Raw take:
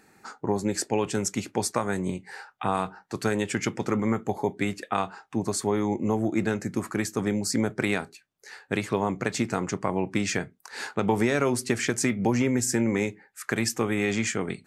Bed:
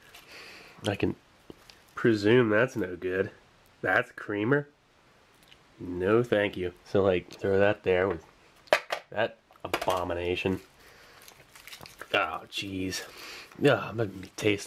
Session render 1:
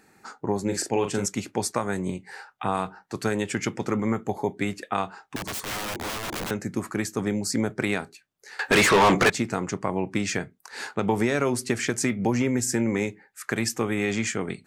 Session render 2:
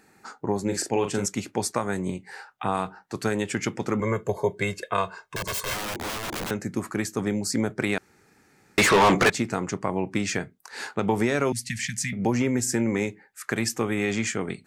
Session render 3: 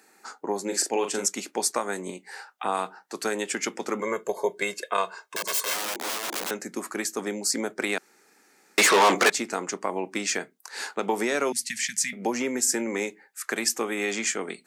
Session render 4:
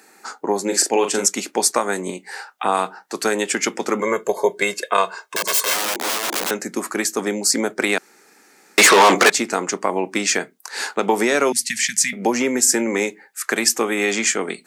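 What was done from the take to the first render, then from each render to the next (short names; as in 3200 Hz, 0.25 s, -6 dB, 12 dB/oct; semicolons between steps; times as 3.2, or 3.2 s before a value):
0.63–1.26 doubler 40 ms -6.5 dB; 5.36–6.51 wrapped overs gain 26.5 dB; 8.59–9.3 overdrive pedal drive 32 dB, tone 6500 Hz, clips at -9.5 dBFS
4–5.74 comb 1.9 ms, depth 93%; 7.98–8.78 room tone; 11.52–12.13 Chebyshev band-stop 210–1800 Hz, order 4
HPF 190 Hz 24 dB/oct; tone controls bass -11 dB, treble +5 dB
gain +8 dB; limiter -1 dBFS, peak gain reduction 2.5 dB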